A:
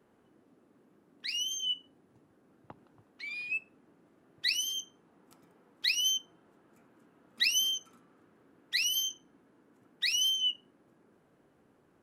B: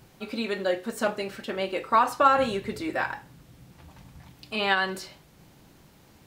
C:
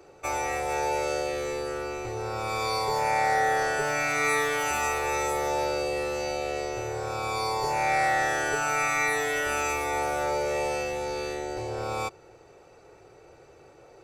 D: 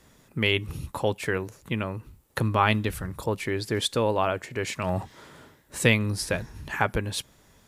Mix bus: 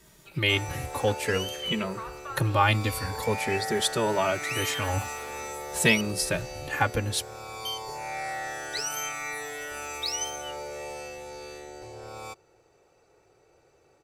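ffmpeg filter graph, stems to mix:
-filter_complex "[0:a]asplit=2[s0][s1];[s1]afreqshift=0.64[s2];[s0][s2]amix=inputs=2:normalize=1,volume=0.794,asplit=3[s3][s4][s5];[s3]atrim=end=6.01,asetpts=PTS-STARTPTS,afade=t=out:st=6.006:d=0.004:c=hsin[s6];[s4]atrim=start=6.01:end=7.65,asetpts=PTS-STARTPTS,volume=0[s7];[s5]atrim=start=7.65,asetpts=PTS-STARTPTS,afade=t=in:d=0.004:c=hsin[s8];[s6][s7][s8]concat=n=3:v=0:a=1[s9];[1:a]acrossover=split=3200[s10][s11];[s11]acompressor=threshold=0.002:ratio=4:attack=1:release=60[s12];[s10][s12]amix=inputs=2:normalize=0,highpass=1300,acompressor=threshold=0.0224:ratio=2.5,adelay=50,volume=0.422[s13];[2:a]adelay=250,volume=0.316[s14];[3:a]asplit=2[s15][s16];[s16]adelay=2.7,afreqshift=-0.5[s17];[s15][s17]amix=inputs=2:normalize=1,volume=1.26[s18];[s9][s13][s14][s18]amix=inputs=4:normalize=0,highshelf=f=4600:g=6.5"

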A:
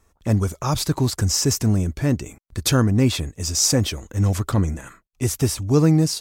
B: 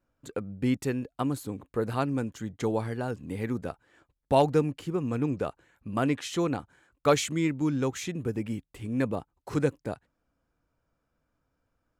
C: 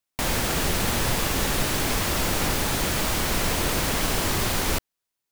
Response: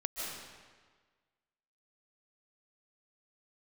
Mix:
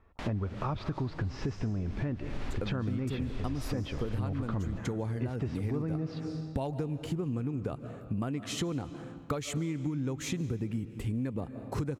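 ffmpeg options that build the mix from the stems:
-filter_complex "[0:a]lowpass=3100,volume=0.708,asplit=3[s0][s1][s2];[s1]volume=0.178[s3];[1:a]lowshelf=f=240:g=11.5,acompressor=threshold=0.0708:ratio=6,adelay=2250,volume=1.12,asplit=2[s4][s5];[s5]volume=0.188[s6];[2:a]asubboost=boost=9:cutoff=59,volume=0.237[s7];[s2]apad=whole_len=234578[s8];[s7][s8]sidechaincompress=threshold=0.0251:ratio=8:attack=36:release=336[s9];[s0][s9]amix=inputs=2:normalize=0,lowpass=3400,alimiter=limit=0.158:level=0:latency=1,volume=1[s10];[3:a]atrim=start_sample=2205[s11];[s3][s6]amix=inputs=2:normalize=0[s12];[s12][s11]afir=irnorm=-1:irlink=0[s13];[s4][s10][s13]amix=inputs=3:normalize=0,acompressor=threshold=0.0316:ratio=6"

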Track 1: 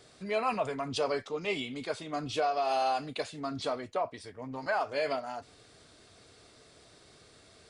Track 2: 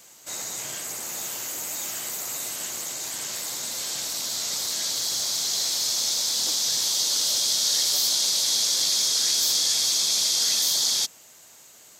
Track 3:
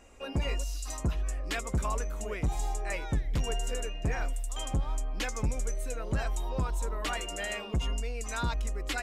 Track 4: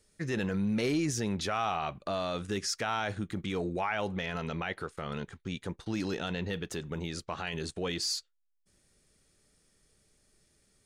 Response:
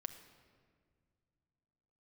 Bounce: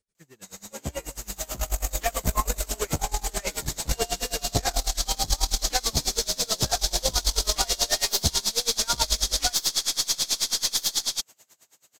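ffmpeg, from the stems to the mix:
-filter_complex "[0:a]adelay=1950,volume=0.224[s0];[1:a]adelay=150,volume=0.708[s1];[2:a]equalizer=f=730:w=1.5:g=7.5,asplit=2[s2][s3];[s3]adelay=10.1,afreqshift=-0.39[s4];[s2][s4]amix=inputs=2:normalize=1,adelay=500,volume=1.41[s5];[3:a]asoftclip=type=tanh:threshold=0.0266,volume=0.355[s6];[s0][s1][s5][s6]amix=inputs=4:normalize=0,dynaudnorm=f=280:g=9:m=3.16,aeval=exprs='(tanh(2.51*val(0)+0.6)-tanh(0.6))/2.51':c=same,aeval=exprs='val(0)*pow(10,-25*(0.5-0.5*cos(2*PI*9.2*n/s))/20)':c=same"

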